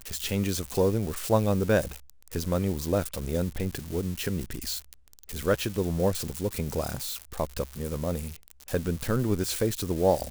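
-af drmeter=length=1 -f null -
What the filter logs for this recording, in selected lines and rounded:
Channel 1: DR: 10.6
Overall DR: 10.6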